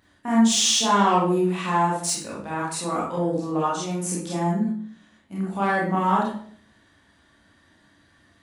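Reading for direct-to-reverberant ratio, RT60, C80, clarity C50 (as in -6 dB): -6.5 dB, 0.55 s, 7.0 dB, 1.5 dB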